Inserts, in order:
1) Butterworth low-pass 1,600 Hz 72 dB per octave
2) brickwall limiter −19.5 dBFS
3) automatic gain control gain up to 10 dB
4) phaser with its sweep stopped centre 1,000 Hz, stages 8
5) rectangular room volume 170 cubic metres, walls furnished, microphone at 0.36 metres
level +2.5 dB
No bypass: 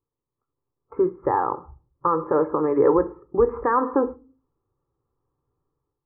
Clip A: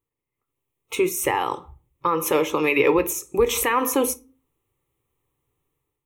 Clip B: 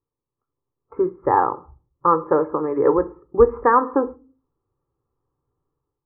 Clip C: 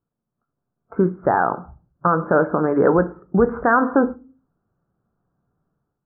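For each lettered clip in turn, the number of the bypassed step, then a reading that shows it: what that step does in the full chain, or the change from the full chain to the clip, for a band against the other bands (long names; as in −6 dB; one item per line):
1, 2 kHz band +12.5 dB
2, average gain reduction 2.0 dB
4, 2 kHz band +9.0 dB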